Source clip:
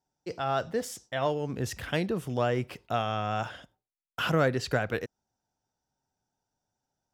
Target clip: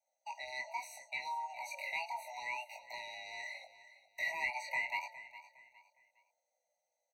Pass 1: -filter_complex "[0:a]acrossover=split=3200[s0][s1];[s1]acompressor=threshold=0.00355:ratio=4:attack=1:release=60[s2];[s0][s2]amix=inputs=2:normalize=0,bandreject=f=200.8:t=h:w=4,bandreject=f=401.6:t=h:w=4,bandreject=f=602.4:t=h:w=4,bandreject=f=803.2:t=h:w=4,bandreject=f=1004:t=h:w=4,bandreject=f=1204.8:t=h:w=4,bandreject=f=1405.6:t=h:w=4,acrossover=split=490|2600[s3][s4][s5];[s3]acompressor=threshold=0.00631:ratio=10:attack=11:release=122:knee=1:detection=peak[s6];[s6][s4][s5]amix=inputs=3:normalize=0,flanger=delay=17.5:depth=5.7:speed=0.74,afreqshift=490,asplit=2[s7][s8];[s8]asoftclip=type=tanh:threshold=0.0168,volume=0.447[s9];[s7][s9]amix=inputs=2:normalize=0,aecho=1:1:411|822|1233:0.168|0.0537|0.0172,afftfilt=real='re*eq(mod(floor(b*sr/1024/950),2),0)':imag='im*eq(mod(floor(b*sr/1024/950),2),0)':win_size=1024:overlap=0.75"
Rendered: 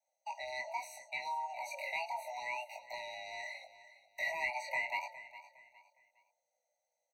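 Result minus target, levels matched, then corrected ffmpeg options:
compression: peak gain reduction -7 dB
-filter_complex "[0:a]acrossover=split=3200[s0][s1];[s1]acompressor=threshold=0.00355:ratio=4:attack=1:release=60[s2];[s0][s2]amix=inputs=2:normalize=0,bandreject=f=200.8:t=h:w=4,bandreject=f=401.6:t=h:w=4,bandreject=f=602.4:t=h:w=4,bandreject=f=803.2:t=h:w=4,bandreject=f=1004:t=h:w=4,bandreject=f=1204.8:t=h:w=4,bandreject=f=1405.6:t=h:w=4,acrossover=split=490|2600[s3][s4][s5];[s3]acompressor=threshold=0.00266:ratio=10:attack=11:release=122:knee=1:detection=peak[s6];[s6][s4][s5]amix=inputs=3:normalize=0,flanger=delay=17.5:depth=5.7:speed=0.74,afreqshift=490,asplit=2[s7][s8];[s8]asoftclip=type=tanh:threshold=0.0168,volume=0.447[s9];[s7][s9]amix=inputs=2:normalize=0,aecho=1:1:411|822|1233:0.168|0.0537|0.0172,afftfilt=real='re*eq(mod(floor(b*sr/1024/950),2),0)':imag='im*eq(mod(floor(b*sr/1024/950),2),0)':win_size=1024:overlap=0.75"

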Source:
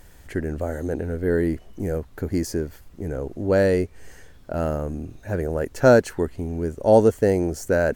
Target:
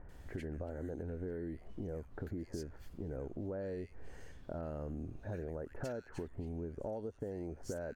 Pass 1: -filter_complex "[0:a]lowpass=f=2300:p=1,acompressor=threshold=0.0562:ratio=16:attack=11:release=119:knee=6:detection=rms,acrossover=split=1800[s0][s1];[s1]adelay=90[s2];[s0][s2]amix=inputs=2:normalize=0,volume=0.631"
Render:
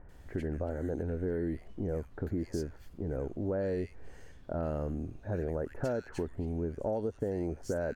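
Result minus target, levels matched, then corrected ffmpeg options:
compression: peak gain reduction -8.5 dB
-filter_complex "[0:a]lowpass=f=2300:p=1,acompressor=threshold=0.02:ratio=16:attack=11:release=119:knee=6:detection=rms,acrossover=split=1800[s0][s1];[s1]adelay=90[s2];[s0][s2]amix=inputs=2:normalize=0,volume=0.631"

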